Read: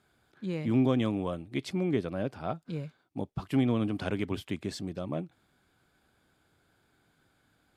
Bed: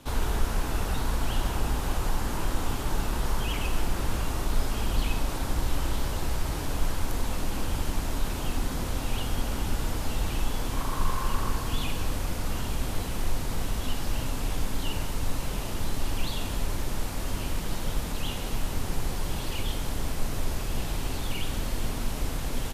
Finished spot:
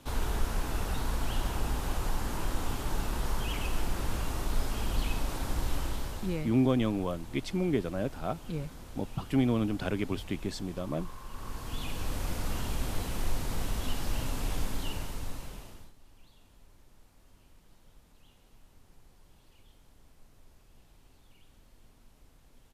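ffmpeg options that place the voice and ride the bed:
-filter_complex "[0:a]adelay=5800,volume=1[s0];[1:a]volume=2.99,afade=t=out:st=5.74:d=0.78:silence=0.237137,afade=t=in:st=11.29:d=1.02:silence=0.211349,afade=t=out:st=14.59:d=1.34:silence=0.0473151[s1];[s0][s1]amix=inputs=2:normalize=0"

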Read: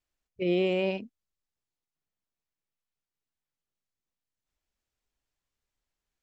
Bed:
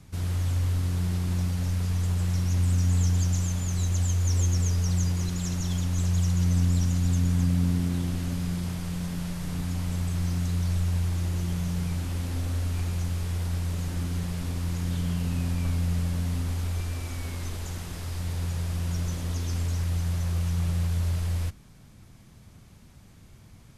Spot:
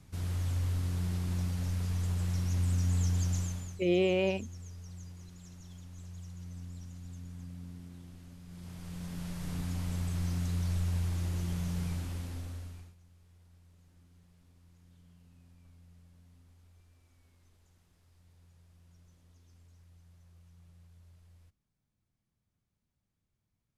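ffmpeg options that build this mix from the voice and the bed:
-filter_complex "[0:a]adelay=3400,volume=0.891[s0];[1:a]volume=3.16,afade=t=out:st=3.38:d=0.42:silence=0.16788,afade=t=in:st=8.46:d=1.02:silence=0.158489,afade=t=out:st=11.88:d=1.07:silence=0.0473151[s1];[s0][s1]amix=inputs=2:normalize=0"

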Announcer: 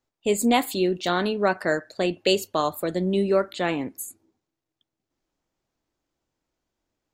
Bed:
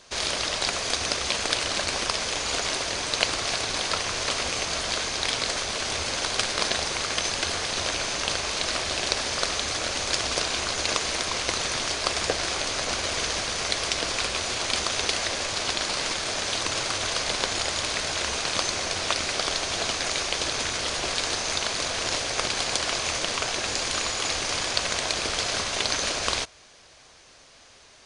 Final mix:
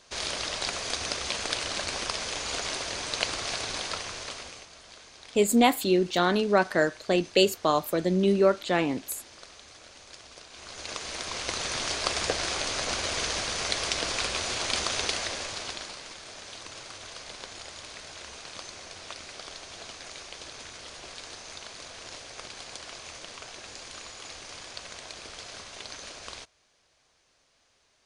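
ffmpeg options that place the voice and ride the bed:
-filter_complex "[0:a]adelay=5100,volume=1[s0];[1:a]volume=5.31,afade=t=out:st=3.7:d=0.99:silence=0.141254,afade=t=in:st=10.5:d=1.44:silence=0.105925,afade=t=out:st=14.94:d=1.07:silence=0.223872[s1];[s0][s1]amix=inputs=2:normalize=0"

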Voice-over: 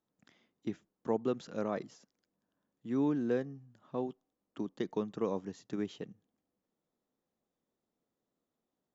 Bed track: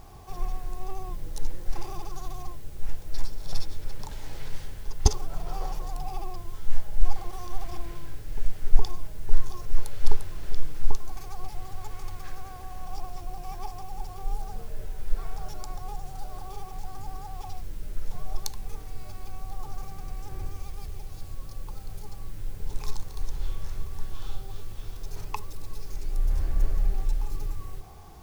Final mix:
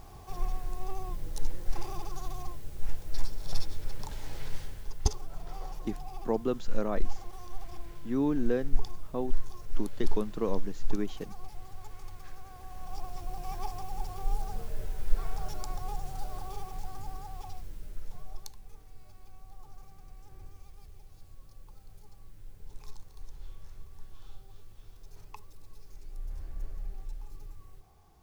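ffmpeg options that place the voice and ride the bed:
-filter_complex "[0:a]adelay=5200,volume=1.33[s0];[1:a]volume=2.11,afade=t=out:st=4.54:d=0.59:silence=0.473151,afade=t=in:st=12.45:d=1.13:silence=0.398107,afade=t=out:st=16.21:d=2.4:silence=0.199526[s1];[s0][s1]amix=inputs=2:normalize=0"

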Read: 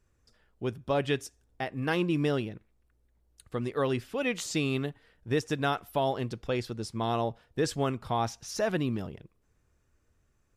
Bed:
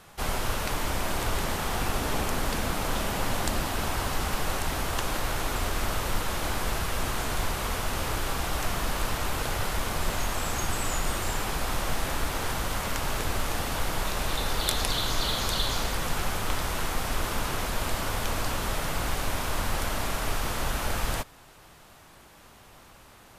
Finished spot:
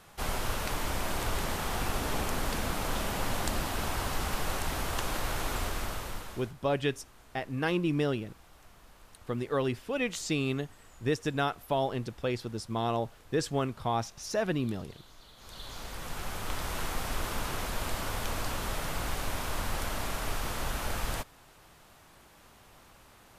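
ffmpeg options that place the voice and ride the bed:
-filter_complex "[0:a]adelay=5750,volume=0.891[s0];[1:a]volume=9.44,afade=t=out:st=5.56:d=0.98:silence=0.0630957,afade=t=in:st=15.36:d=1.44:silence=0.0707946[s1];[s0][s1]amix=inputs=2:normalize=0"

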